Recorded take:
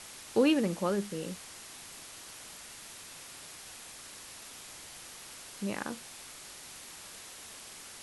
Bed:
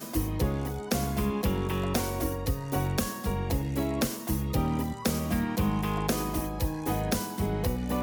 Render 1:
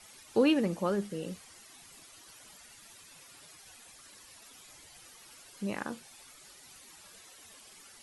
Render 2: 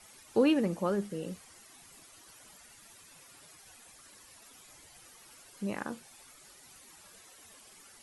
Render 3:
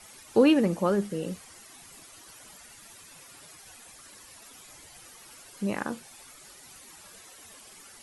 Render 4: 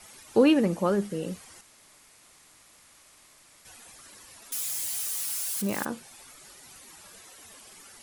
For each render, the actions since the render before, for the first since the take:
denoiser 12 dB, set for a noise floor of -49 dBFS
bell 3800 Hz -3.5 dB 1.7 oct
gain +5.5 dB
1.61–3.65 room tone; 4.52–5.85 switching spikes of -27 dBFS

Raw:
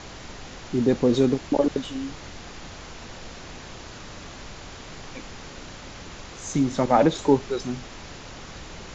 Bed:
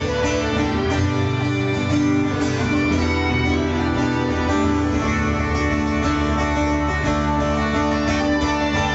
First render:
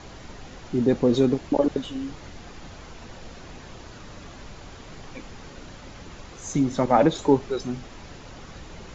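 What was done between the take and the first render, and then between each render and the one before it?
denoiser 6 dB, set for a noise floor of -41 dBFS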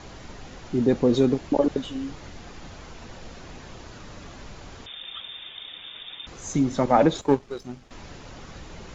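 4.86–6.27 inverted band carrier 3600 Hz; 7.21–7.91 power-law curve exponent 1.4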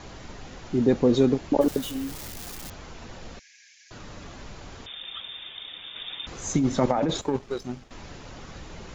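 1.61–2.7 switching spikes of -29 dBFS; 3.39–3.91 rippled Chebyshev high-pass 1600 Hz, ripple 9 dB; 5.96–7.84 negative-ratio compressor -22 dBFS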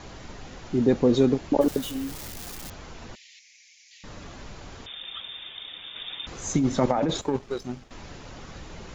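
3.15–4.04 steep high-pass 1900 Hz 96 dB/oct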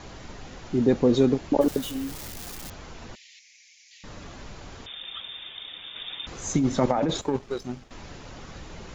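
nothing audible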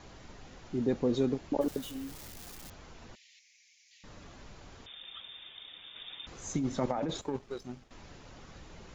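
gain -9 dB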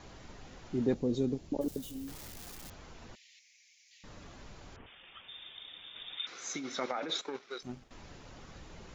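0.94–2.08 bell 1400 Hz -12 dB 2.5 oct; 4.76–5.28 steep low-pass 3100 Hz 72 dB/oct; 6.17–7.63 speaker cabinet 430–6900 Hz, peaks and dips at 600 Hz -4 dB, 900 Hz -5 dB, 1400 Hz +8 dB, 2200 Hz +8 dB, 3800 Hz +8 dB, 5600 Hz +6 dB

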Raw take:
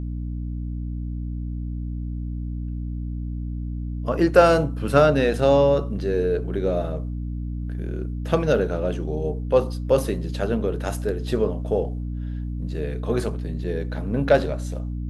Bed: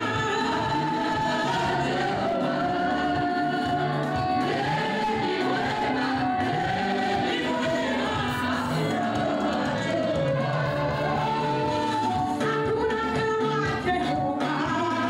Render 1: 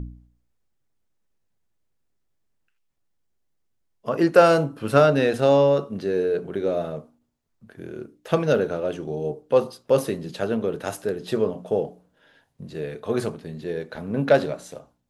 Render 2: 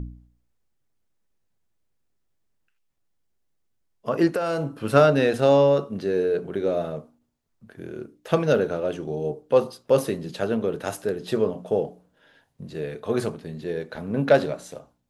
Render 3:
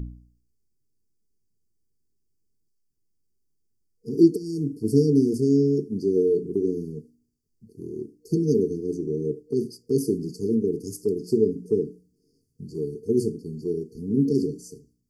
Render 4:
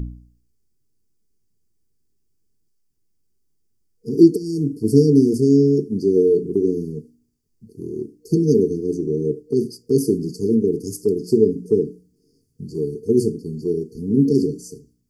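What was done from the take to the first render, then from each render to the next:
de-hum 60 Hz, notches 5
4.27–4.72 compressor 16:1, threshold -21 dBFS
FFT band-reject 470–4400 Hz; dynamic EQ 290 Hz, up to +6 dB, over -38 dBFS, Q 1.6
gain +5.5 dB; limiter -1 dBFS, peak gain reduction 1 dB

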